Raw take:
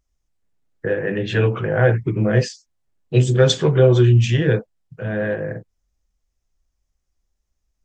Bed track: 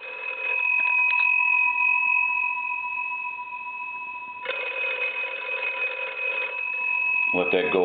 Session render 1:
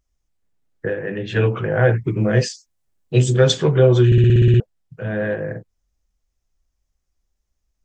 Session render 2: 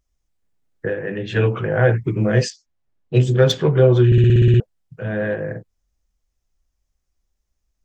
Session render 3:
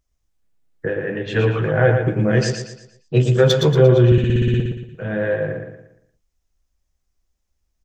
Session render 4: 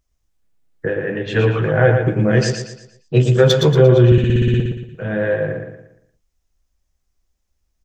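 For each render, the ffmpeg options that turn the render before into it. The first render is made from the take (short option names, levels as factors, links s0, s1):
-filter_complex "[0:a]asettb=1/sr,asplit=3[s0][s1][s2];[s0]atrim=end=2.044[s3];[s1]atrim=start=2.04:end=3.4,asetpts=PTS-STARTPTS,afade=t=in:d=0.004:c=qsin,afade=t=out:st=1.356:d=0.004:c=qsin,highshelf=f=5800:g=7.5[s4];[s2]atrim=start=3.396[s5];[s3][s4]acrossfade=d=0.004:c1=hsin:c2=qsin[s6];[s6][s5]acrossfade=d=0.004:c1=qsin:c2=hsin,asplit=12[s7][s8][s9][s10][s11][s12][s13][s14][s15][s16][s17][s18];[s7]atrim=end=0.902[s19];[s8]atrim=start=0.898:end=1.362,asetpts=PTS-STARTPTS,volume=0.668[s20];[s9]atrim=start=1.358:end=4.122[s21];[s10]atrim=start=4.058:end=4.122[s22];[s11]atrim=start=4.058:end=4.122[s23];[s12]atrim=start=4.058:end=4.122[s24];[s13]atrim=start=4.058:end=4.122[s25];[s14]atrim=start=4.058:end=4.122[s26];[s15]atrim=start=4.058:end=4.122[s27];[s16]atrim=start=4.058:end=4.122[s28];[s17]atrim=start=4.058:end=4.122[s29];[s18]atrim=start=4.598[s30];[s19][s20]acrossfade=d=0.004:c1=hsin:c2=hsin[s31];[s31][s21]acrossfade=d=0.004:c1=hsin:c2=hsin[s32];[s32][s22]acrossfade=d=0.004:c1=hsin:c2=hsin[s33];[s33][s23]acrossfade=d=0.004:c1=hsin:c2=hsin[s34];[s34][s24]acrossfade=d=0.004:c1=hsin:c2=hsin[s35];[s35][s25]acrossfade=d=0.004:c1=hsin:c2=hsin[s36];[s36][s26]acrossfade=d=0.004:c1=hsin:c2=hsin[s37];[s37][s27]acrossfade=d=0.004:c1=hsin:c2=hsin[s38];[s38][s28]acrossfade=d=0.004:c1=hsin:c2=hsin[s39];[s39][s29]acrossfade=d=0.004:c1=hsin:c2=hsin[s40];[s40][s30]acrossfade=d=0.004:c1=hsin:c2=hsin"
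-filter_complex "[0:a]asettb=1/sr,asplit=3[s0][s1][s2];[s0]atrim=end=2.504[s3];[s1]atrim=start=2.5:end=4.14,asetpts=PTS-STARTPTS,afade=t=in:d=0.004:c=qsin,afade=t=out:st=1.636:d=0.004:c=qsin,adynamicsmooth=sensitivity=0.5:basefreq=3900[s4];[s2]atrim=start=4.136[s5];[s3][s4]acrossfade=d=0.004:c1=hsin:c2=qsin[s6];[s6][s5]acrossfade=d=0.004:c1=qsin:c2=hsin"
-filter_complex "[0:a]asplit=2[s0][s1];[s1]adelay=13,volume=0.224[s2];[s0][s2]amix=inputs=2:normalize=0,asplit=2[s3][s4];[s4]aecho=0:1:116|232|348|464|580:0.501|0.195|0.0762|0.0297|0.0116[s5];[s3][s5]amix=inputs=2:normalize=0"
-af "volume=1.26,alimiter=limit=0.891:level=0:latency=1"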